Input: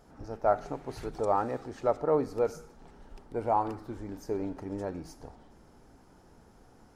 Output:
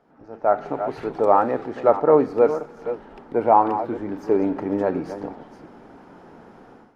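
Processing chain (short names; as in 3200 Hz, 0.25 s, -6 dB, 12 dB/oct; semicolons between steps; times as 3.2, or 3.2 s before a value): reverse delay 0.333 s, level -11.5 dB; AGC gain up to 15 dB; three-band isolator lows -18 dB, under 150 Hz, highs -19 dB, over 3300 Hz; gain -1 dB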